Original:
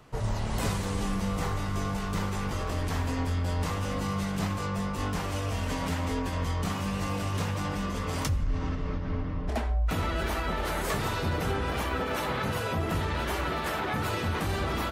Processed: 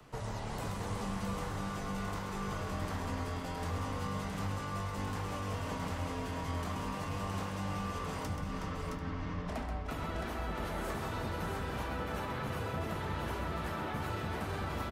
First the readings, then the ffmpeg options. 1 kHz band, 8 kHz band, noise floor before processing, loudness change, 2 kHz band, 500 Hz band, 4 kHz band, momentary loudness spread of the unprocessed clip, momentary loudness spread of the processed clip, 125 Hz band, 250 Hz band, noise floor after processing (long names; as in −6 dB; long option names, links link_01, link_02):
−5.5 dB, −9.0 dB, −32 dBFS, −7.5 dB, −7.5 dB, −6.5 dB, −9.0 dB, 2 LU, 2 LU, −8.0 dB, −7.0 dB, −40 dBFS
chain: -filter_complex "[0:a]acrossover=split=100|220|650|1400[link_01][link_02][link_03][link_04][link_05];[link_01]acompressor=threshold=-45dB:ratio=4[link_06];[link_02]acompressor=threshold=-42dB:ratio=4[link_07];[link_03]acompressor=threshold=-46dB:ratio=4[link_08];[link_04]acompressor=threshold=-43dB:ratio=4[link_09];[link_05]acompressor=threshold=-49dB:ratio=4[link_10];[link_06][link_07][link_08][link_09][link_10]amix=inputs=5:normalize=0,aecho=1:1:131|369|667|740:0.422|0.299|0.596|0.133,volume=-2dB"